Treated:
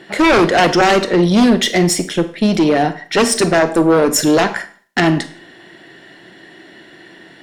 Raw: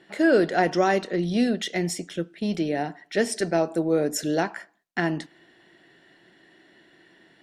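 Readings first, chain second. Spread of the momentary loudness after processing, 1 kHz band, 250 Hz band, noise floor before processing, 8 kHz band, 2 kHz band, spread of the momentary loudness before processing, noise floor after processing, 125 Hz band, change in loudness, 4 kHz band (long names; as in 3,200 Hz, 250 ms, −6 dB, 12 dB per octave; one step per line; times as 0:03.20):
7 LU, +12.0 dB, +11.0 dB, −60 dBFS, +14.0 dB, +11.5 dB, 10 LU, −43 dBFS, +11.5 dB, +11.0 dB, +15.0 dB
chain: sine wavefolder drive 11 dB, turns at −7.5 dBFS
harmonic generator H 4 −27 dB, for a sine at −6.5 dBFS
four-comb reverb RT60 0.43 s, combs from 33 ms, DRR 12 dB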